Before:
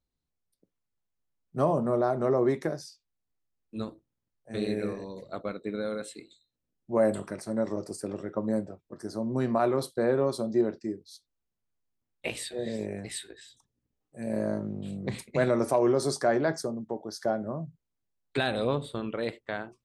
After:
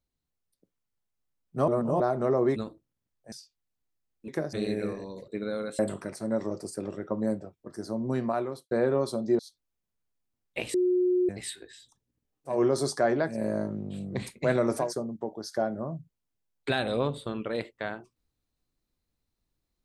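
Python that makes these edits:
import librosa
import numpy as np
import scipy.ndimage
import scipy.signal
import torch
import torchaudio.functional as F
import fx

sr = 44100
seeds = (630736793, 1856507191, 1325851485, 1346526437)

y = fx.edit(x, sr, fx.reverse_span(start_s=1.68, length_s=0.32),
    fx.swap(start_s=2.56, length_s=0.25, other_s=3.77, other_length_s=0.76),
    fx.cut(start_s=5.28, length_s=0.32),
    fx.cut(start_s=6.11, length_s=0.94),
    fx.fade_out_span(start_s=9.17, length_s=0.8, curve='qsin'),
    fx.cut(start_s=10.65, length_s=0.42),
    fx.bleep(start_s=12.42, length_s=0.55, hz=362.0, db=-21.0),
    fx.move(start_s=15.77, length_s=0.76, to_s=14.21, crossfade_s=0.16), tone=tone)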